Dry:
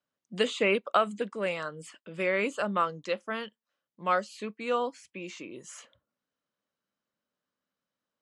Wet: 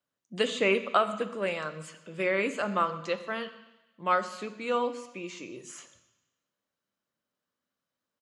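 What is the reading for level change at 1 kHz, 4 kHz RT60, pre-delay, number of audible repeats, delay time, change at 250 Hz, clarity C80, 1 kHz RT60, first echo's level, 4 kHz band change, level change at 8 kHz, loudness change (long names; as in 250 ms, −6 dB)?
+1.0 dB, 1.1 s, 3 ms, 1, 124 ms, +0.5 dB, 14.5 dB, 1.1 s, −21.5 dB, +0.5 dB, +1.0 dB, +0.5 dB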